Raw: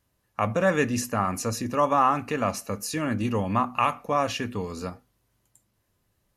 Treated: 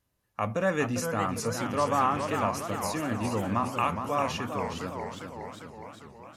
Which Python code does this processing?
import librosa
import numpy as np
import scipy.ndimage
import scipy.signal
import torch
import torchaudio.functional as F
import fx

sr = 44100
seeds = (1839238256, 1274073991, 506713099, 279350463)

y = fx.dmg_buzz(x, sr, base_hz=100.0, harmonics=34, level_db=-35.0, tilt_db=-4, odd_only=False, at=(1.64, 2.44), fade=0.02)
y = fx.echo_warbled(y, sr, ms=408, feedback_pct=64, rate_hz=2.8, cents=218, wet_db=-7.0)
y = F.gain(torch.from_numpy(y), -4.5).numpy()